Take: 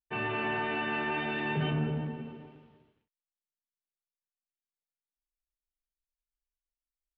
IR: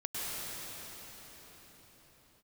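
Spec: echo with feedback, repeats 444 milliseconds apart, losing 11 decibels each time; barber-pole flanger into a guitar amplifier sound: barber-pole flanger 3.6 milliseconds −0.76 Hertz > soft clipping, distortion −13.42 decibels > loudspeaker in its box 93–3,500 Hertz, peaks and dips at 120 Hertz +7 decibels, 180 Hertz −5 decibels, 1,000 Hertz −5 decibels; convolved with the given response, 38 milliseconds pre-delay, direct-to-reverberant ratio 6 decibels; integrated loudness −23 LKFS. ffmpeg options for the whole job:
-filter_complex "[0:a]aecho=1:1:444|888|1332:0.282|0.0789|0.0221,asplit=2[link_01][link_02];[1:a]atrim=start_sample=2205,adelay=38[link_03];[link_02][link_03]afir=irnorm=-1:irlink=0,volume=-11.5dB[link_04];[link_01][link_04]amix=inputs=2:normalize=0,asplit=2[link_05][link_06];[link_06]adelay=3.6,afreqshift=-0.76[link_07];[link_05][link_07]amix=inputs=2:normalize=1,asoftclip=threshold=-31.5dB,highpass=93,equalizer=frequency=120:width_type=q:width=4:gain=7,equalizer=frequency=180:width_type=q:width=4:gain=-5,equalizer=frequency=1000:width_type=q:width=4:gain=-5,lowpass=frequency=3500:width=0.5412,lowpass=frequency=3500:width=1.3066,volume=15.5dB"

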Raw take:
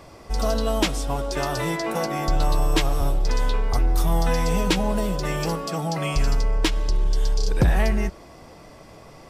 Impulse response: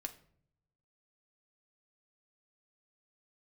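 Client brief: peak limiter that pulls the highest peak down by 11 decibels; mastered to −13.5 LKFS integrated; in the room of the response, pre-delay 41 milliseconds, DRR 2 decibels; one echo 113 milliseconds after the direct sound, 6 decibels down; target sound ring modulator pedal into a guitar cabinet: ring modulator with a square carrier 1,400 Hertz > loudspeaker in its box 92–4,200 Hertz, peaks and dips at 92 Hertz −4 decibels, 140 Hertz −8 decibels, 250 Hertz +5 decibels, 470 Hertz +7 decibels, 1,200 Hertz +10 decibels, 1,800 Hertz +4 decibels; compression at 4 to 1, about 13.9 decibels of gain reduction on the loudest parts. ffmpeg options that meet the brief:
-filter_complex "[0:a]acompressor=threshold=-31dB:ratio=4,alimiter=level_in=5.5dB:limit=-24dB:level=0:latency=1,volume=-5.5dB,aecho=1:1:113:0.501,asplit=2[link_01][link_02];[1:a]atrim=start_sample=2205,adelay=41[link_03];[link_02][link_03]afir=irnorm=-1:irlink=0,volume=0.5dB[link_04];[link_01][link_04]amix=inputs=2:normalize=0,aeval=exprs='val(0)*sgn(sin(2*PI*1400*n/s))':channel_layout=same,highpass=92,equalizer=frequency=92:width_type=q:width=4:gain=-4,equalizer=frequency=140:width_type=q:width=4:gain=-8,equalizer=frequency=250:width_type=q:width=4:gain=5,equalizer=frequency=470:width_type=q:width=4:gain=7,equalizer=frequency=1200:width_type=q:width=4:gain=10,equalizer=frequency=1800:width_type=q:width=4:gain=4,lowpass=frequency=4200:width=0.5412,lowpass=frequency=4200:width=1.3066,volume=14.5dB"

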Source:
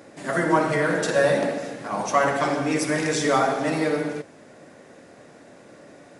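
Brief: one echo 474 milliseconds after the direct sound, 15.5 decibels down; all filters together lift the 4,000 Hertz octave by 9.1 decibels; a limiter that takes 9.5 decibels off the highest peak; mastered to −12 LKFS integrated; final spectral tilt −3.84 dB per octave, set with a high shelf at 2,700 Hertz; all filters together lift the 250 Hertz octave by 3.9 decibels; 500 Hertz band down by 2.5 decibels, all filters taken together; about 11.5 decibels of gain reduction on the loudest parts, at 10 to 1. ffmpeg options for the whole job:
ffmpeg -i in.wav -af "equalizer=frequency=250:width_type=o:gain=7,equalizer=frequency=500:width_type=o:gain=-5,highshelf=frequency=2700:gain=4,equalizer=frequency=4000:width_type=o:gain=8,acompressor=threshold=-26dB:ratio=10,alimiter=level_in=1dB:limit=-24dB:level=0:latency=1,volume=-1dB,aecho=1:1:474:0.168,volume=22dB" out.wav

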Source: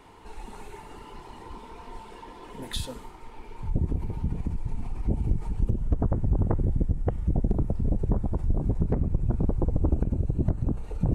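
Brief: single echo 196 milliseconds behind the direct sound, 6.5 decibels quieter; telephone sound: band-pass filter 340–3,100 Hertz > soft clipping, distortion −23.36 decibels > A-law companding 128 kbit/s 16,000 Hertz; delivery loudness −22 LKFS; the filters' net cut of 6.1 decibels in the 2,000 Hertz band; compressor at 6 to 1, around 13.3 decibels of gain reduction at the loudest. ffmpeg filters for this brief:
ffmpeg -i in.wav -af "equalizer=frequency=2000:width_type=o:gain=-7,acompressor=threshold=-33dB:ratio=6,highpass=340,lowpass=3100,aecho=1:1:196:0.473,asoftclip=threshold=-32dB,volume=27.5dB" -ar 16000 -c:a pcm_alaw out.wav

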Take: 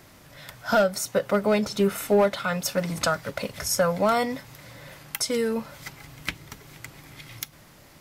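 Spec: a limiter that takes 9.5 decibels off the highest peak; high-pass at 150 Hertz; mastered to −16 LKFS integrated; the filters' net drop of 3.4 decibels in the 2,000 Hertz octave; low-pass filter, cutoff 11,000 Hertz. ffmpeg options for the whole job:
ffmpeg -i in.wav -af "highpass=150,lowpass=11000,equalizer=frequency=2000:width_type=o:gain=-5,volume=14.5dB,alimiter=limit=-6dB:level=0:latency=1" out.wav

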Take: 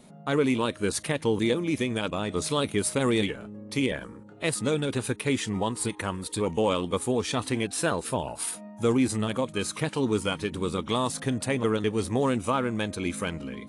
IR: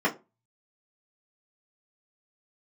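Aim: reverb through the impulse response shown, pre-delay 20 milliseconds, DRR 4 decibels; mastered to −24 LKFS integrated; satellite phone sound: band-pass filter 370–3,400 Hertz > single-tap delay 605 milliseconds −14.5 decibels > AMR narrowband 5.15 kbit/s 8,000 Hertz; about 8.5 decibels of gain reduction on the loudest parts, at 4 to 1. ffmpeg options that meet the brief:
-filter_complex "[0:a]acompressor=threshold=-30dB:ratio=4,asplit=2[link_01][link_02];[1:a]atrim=start_sample=2205,adelay=20[link_03];[link_02][link_03]afir=irnorm=-1:irlink=0,volume=-17.5dB[link_04];[link_01][link_04]amix=inputs=2:normalize=0,highpass=370,lowpass=3400,aecho=1:1:605:0.188,volume=14dB" -ar 8000 -c:a libopencore_amrnb -b:a 5150

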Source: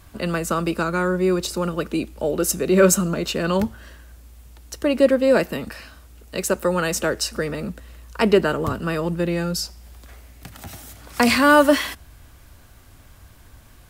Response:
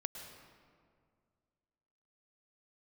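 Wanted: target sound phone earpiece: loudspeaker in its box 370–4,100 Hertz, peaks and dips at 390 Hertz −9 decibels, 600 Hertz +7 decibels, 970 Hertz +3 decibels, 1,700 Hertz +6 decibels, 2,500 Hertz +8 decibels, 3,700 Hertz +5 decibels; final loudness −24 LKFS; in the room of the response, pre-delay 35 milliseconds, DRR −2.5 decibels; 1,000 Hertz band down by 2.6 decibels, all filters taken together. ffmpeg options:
-filter_complex "[0:a]equalizer=frequency=1000:width_type=o:gain=-6.5,asplit=2[link_01][link_02];[1:a]atrim=start_sample=2205,adelay=35[link_03];[link_02][link_03]afir=irnorm=-1:irlink=0,volume=3.5dB[link_04];[link_01][link_04]amix=inputs=2:normalize=0,highpass=370,equalizer=frequency=390:width_type=q:width=4:gain=-9,equalizer=frequency=600:width_type=q:width=4:gain=7,equalizer=frequency=970:width_type=q:width=4:gain=3,equalizer=frequency=1700:width_type=q:width=4:gain=6,equalizer=frequency=2500:width_type=q:width=4:gain=8,equalizer=frequency=3700:width_type=q:width=4:gain=5,lowpass=frequency=4100:width=0.5412,lowpass=frequency=4100:width=1.3066,volume=-7dB"

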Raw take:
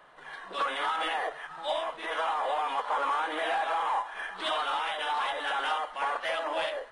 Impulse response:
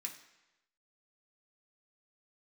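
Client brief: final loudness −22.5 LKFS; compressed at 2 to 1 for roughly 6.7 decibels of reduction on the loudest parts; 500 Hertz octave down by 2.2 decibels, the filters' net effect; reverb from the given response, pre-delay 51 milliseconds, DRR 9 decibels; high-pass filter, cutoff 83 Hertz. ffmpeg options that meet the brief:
-filter_complex "[0:a]highpass=83,equalizer=frequency=500:width_type=o:gain=-3,acompressor=threshold=-39dB:ratio=2,asplit=2[link_01][link_02];[1:a]atrim=start_sample=2205,adelay=51[link_03];[link_02][link_03]afir=irnorm=-1:irlink=0,volume=-6.5dB[link_04];[link_01][link_04]amix=inputs=2:normalize=0,volume=14.5dB"

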